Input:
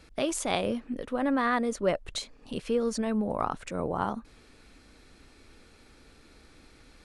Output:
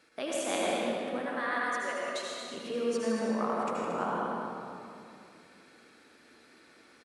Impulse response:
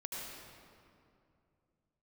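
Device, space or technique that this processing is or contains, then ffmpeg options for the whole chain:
stadium PA: -filter_complex "[0:a]asettb=1/sr,asplit=3[link_01][link_02][link_03];[link_01]atrim=end=1.194[link_04];[link_02]atrim=start=1.19:end=2.07,asetpts=PTS-STARTPTS,afade=type=in:duration=0.004:curve=qsin,afade=type=out:start_time=0.876:duration=0.004:curve=qsin,highpass=frequency=1200:poles=1[link_05];[link_03]atrim=start=2.066[link_06];[link_04][link_05]acrossfade=duration=0.004:curve1=hsin:curve2=qsin[link_07];[link_07][link_06]acrossfade=duration=0.004:curve1=qsin:curve2=hsin,highpass=210,lowshelf=frequency=140:gain=-5.5,equalizer=frequency=1600:width_type=o:width=0.65:gain=5,aecho=1:1:160.3|227.4:0.355|0.316[link_08];[1:a]atrim=start_sample=2205[link_09];[link_08][link_09]afir=irnorm=-1:irlink=0,volume=-2dB"

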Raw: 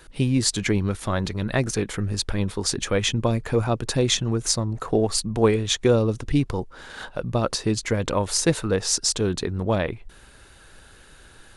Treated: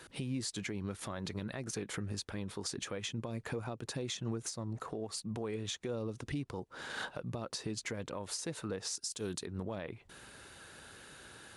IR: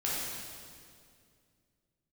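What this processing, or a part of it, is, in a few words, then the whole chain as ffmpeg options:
podcast mastering chain: -filter_complex "[0:a]asettb=1/sr,asplit=3[link_01][link_02][link_03];[link_01]atrim=end=8.954[link_04];[link_02]atrim=start=8.95:end=9.46,asetpts=PTS-STARTPTS,afade=type=in:duration=0.004:curve=qsin,afade=type=out:start_time=0.506:duration=0.004:curve=qsin,aemphasis=mode=production:type=75fm[link_05];[link_03]atrim=start=9.456[link_06];[link_04][link_05]acrossfade=duration=0.004:curve1=hsin:curve2=qsin[link_07];[link_07][link_06]acrossfade=duration=0.004:curve1=qsin:curve2=hsin,highpass=110,acompressor=threshold=-33dB:ratio=3,alimiter=level_in=2.5dB:limit=-24dB:level=0:latency=1:release=152,volume=-2.5dB,volume=-1.5dB" -ar 32000 -c:a libmp3lame -b:a 96k

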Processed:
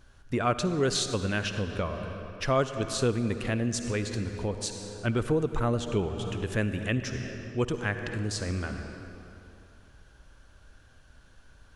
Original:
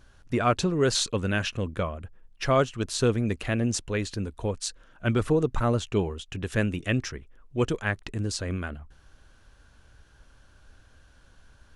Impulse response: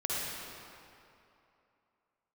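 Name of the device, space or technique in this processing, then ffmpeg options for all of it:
ducked reverb: -filter_complex "[0:a]asplit=3[link_01][link_02][link_03];[1:a]atrim=start_sample=2205[link_04];[link_02][link_04]afir=irnorm=-1:irlink=0[link_05];[link_03]apad=whole_len=518240[link_06];[link_05][link_06]sidechaincompress=threshold=-31dB:ratio=6:attack=41:release=300,volume=-7.5dB[link_07];[link_01][link_07]amix=inputs=2:normalize=0,volume=-4dB"

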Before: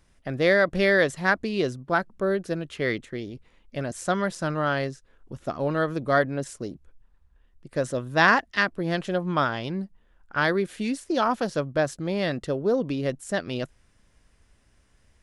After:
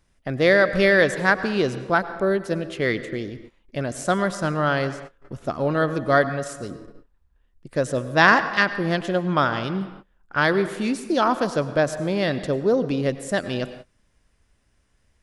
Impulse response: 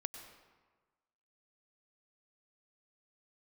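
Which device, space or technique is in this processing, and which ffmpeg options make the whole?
keyed gated reverb: -filter_complex "[0:a]asplit=3[link_01][link_02][link_03];[1:a]atrim=start_sample=2205[link_04];[link_02][link_04]afir=irnorm=-1:irlink=0[link_05];[link_03]apad=whole_len=671227[link_06];[link_05][link_06]sidechaingate=range=-33dB:threshold=-49dB:ratio=16:detection=peak,volume=4dB[link_07];[link_01][link_07]amix=inputs=2:normalize=0,asettb=1/sr,asplit=3[link_08][link_09][link_10];[link_08]atrim=end=6.294[link_11];[link_09]atrim=start=6.29:end=6.69,asetpts=PTS-STARTPTS,afade=type=in:duration=0.004:curve=qsin,afade=type=out:start_time=0.396:duration=0.004:curve=qsin,equalizer=frequency=310:width_type=o:width=0.77:gain=-8[link_12];[link_10]atrim=start=6.686[link_13];[link_11][link_12]acrossfade=duration=0.004:curve1=hsin:curve2=qsin[link_14];[link_14][link_13]acrossfade=duration=0.004:curve1=qsin:curve2=hsin,volume=-3.5dB"

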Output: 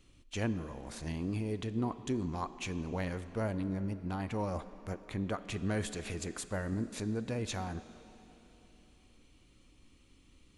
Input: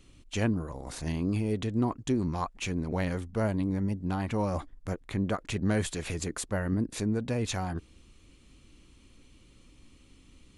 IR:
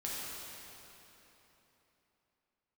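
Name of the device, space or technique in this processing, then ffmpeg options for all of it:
filtered reverb send: -filter_complex "[0:a]asplit=2[link_01][link_02];[link_02]highpass=frequency=180:width=0.5412,highpass=frequency=180:width=1.3066,lowpass=7700[link_03];[1:a]atrim=start_sample=2205[link_04];[link_03][link_04]afir=irnorm=-1:irlink=0,volume=-13.5dB[link_05];[link_01][link_05]amix=inputs=2:normalize=0,volume=-6dB"

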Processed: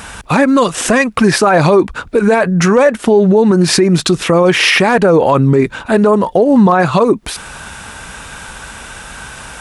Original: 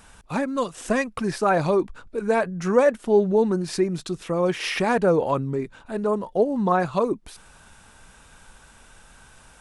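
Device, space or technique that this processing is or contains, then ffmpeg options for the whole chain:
mastering chain: -af "highpass=42,equalizer=frequency=2000:width_type=o:width=2:gain=3.5,acompressor=threshold=-24dB:ratio=2,asoftclip=type=hard:threshold=-14dB,alimiter=level_in=20.5dB:limit=-1dB:release=50:level=0:latency=1,volume=-1dB"

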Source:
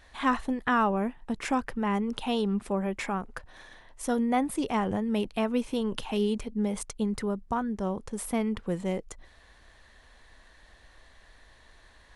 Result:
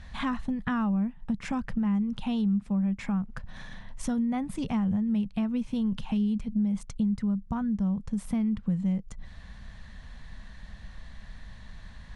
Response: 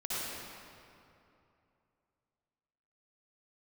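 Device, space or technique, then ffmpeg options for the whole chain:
jukebox: -af "lowpass=7400,lowshelf=frequency=260:width_type=q:width=3:gain=10.5,acompressor=threshold=-34dB:ratio=3,volume=3.5dB"

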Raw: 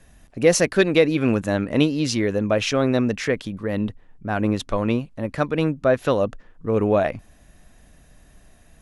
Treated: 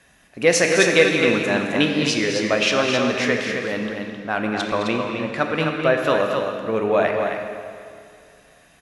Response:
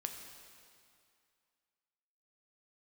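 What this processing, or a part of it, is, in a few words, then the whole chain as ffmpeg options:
stadium PA: -filter_complex "[0:a]asettb=1/sr,asplit=3[link_01][link_02][link_03];[link_01]atrim=end=4.544[link_04];[link_02]atrim=start=4.54:end=5.36,asetpts=PTS-STARTPTS,afade=type=in:duration=0.004:curve=qsin,afade=type=out:start_time=0.816:duration=0.004:curve=qsin,lowpass=7800[link_05];[link_03]atrim=start=5.356[link_06];[link_04][link_05]acrossfade=duration=0.004:curve1=hsin:curve2=qsin[link_07];[link_07][link_06]acrossfade=duration=0.004:curve1=qsin:curve2=hsin,highpass=frequency=200:poles=1,equalizer=frequency=2300:width_type=o:width=2.8:gain=7.5,aecho=1:1:212.8|262.4:0.282|0.501[link_08];[1:a]atrim=start_sample=2205[link_09];[link_08][link_09]afir=irnorm=-1:irlink=0"

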